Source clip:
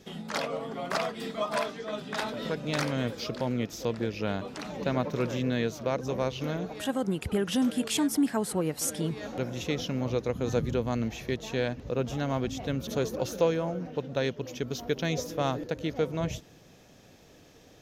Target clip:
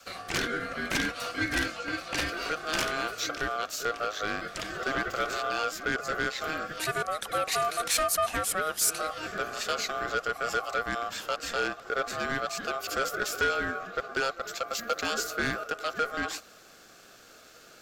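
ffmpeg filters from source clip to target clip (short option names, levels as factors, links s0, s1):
-af "highpass=290,aeval=exprs='val(0)*sin(2*PI*940*n/s)':c=same,adynamicequalizer=threshold=0.00398:dfrequency=410:dqfactor=1.8:tfrequency=410:tqfactor=1.8:attack=5:release=100:ratio=0.375:range=2:mode=cutabove:tftype=bell,asoftclip=type=tanh:threshold=0.0501,highshelf=f=4300:g=5.5,volume=2"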